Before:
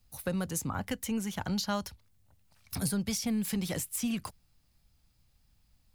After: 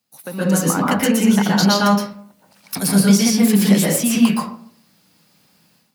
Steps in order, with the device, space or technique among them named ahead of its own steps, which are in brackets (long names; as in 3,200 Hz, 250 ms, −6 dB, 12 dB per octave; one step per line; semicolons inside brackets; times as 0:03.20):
far laptop microphone (convolution reverb RT60 0.55 s, pre-delay 113 ms, DRR −4 dB; high-pass filter 180 Hz 24 dB per octave; automatic gain control gain up to 14.5 dB)